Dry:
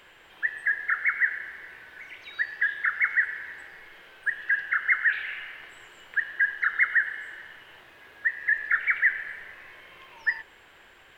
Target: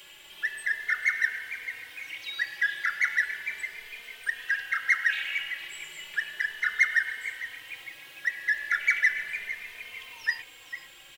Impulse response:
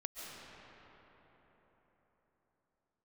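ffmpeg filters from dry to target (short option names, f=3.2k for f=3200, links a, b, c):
-filter_complex "[0:a]asplit=4[a][b][c][d];[b]adelay=454,afreqshift=150,volume=-13.5dB[e];[c]adelay=908,afreqshift=300,volume=-23.4dB[f];[d]adelay=1362,afreqshift=450,volume=-33.3dB[g];[a][e][f][g]amix=inputs=4:normalize=0,aexciter=amount=1.7:drive=10:freq=2.4k,asplit=2[h][i];[i]adelay=3.1,afreqshift=0.35[j];[h][j]amix=inputs=2:normalize=1"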